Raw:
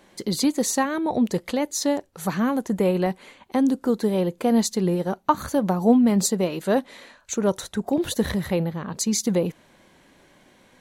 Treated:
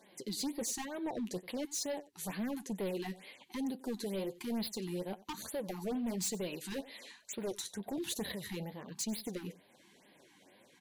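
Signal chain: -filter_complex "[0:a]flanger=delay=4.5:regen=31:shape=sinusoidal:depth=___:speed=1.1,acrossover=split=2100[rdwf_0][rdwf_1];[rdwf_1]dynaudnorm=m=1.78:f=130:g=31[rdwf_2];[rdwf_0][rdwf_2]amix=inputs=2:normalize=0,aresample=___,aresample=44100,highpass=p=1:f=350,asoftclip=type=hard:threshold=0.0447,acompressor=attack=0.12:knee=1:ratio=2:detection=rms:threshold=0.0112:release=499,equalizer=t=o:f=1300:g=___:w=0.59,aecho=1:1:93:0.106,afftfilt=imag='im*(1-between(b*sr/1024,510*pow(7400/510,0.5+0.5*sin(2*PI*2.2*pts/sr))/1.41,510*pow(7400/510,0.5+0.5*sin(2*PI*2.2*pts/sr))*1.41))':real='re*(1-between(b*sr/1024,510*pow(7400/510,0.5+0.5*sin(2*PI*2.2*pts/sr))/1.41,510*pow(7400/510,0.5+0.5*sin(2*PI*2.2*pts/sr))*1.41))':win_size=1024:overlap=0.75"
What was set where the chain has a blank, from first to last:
6.4, 32000, -11.5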